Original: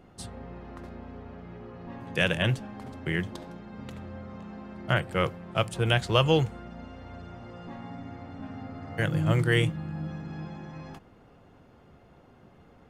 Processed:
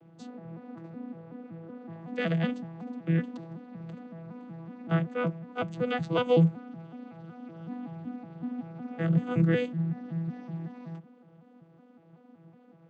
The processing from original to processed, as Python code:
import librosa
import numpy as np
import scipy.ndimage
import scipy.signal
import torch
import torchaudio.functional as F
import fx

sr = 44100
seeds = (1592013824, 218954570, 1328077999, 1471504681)

y = fx.vocoder_arp(x, sr, chord='bare fifth', root=52, every_ms=187)